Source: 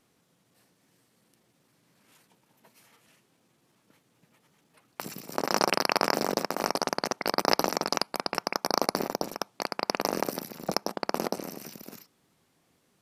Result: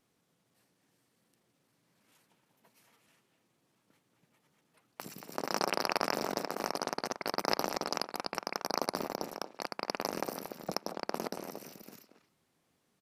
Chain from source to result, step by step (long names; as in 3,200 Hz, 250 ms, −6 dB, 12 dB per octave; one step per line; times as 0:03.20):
pitch vibrato 11 Hz 37 cents
far-end echo of a speakerphone 230 ms, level −7 dB
level −7 dB